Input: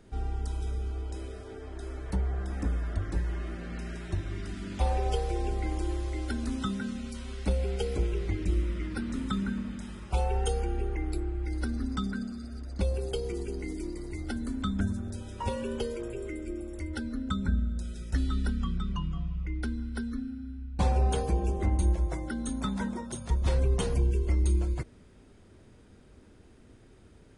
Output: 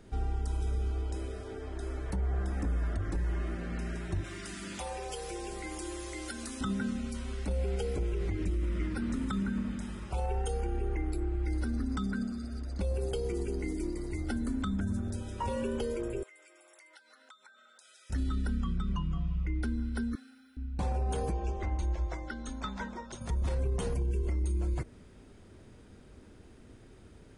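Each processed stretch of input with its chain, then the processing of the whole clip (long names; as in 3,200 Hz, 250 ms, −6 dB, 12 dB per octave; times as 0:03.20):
0:04.24–0:06.61: spectral tilt +3 dB per octave + downward compressor 3 to 1, threshold −37 dBFS + comb filter 5.8 ms, depth 31%
0:16.23–0:18.10: high-pass filter 770 Hz 24 dB per octave + downward compressor 4 to 1, threshold −57 dBFS
0:20.15–0:20.57: high-pass filter 820 Hz + high-shelf EQ 7,900 Hz +10 dB
0:21.32–0:23.21: low-pass filter 6,200 Hz 24 dB per octave + parametric band 170 Hz −12 dB 2.9 octaves
whole clip: dynamic equaliser 3,900 Hz, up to −4 dB, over −57 dBFS, Q 1.1; brickwall limiter −26 dBFS; level +1.5 dB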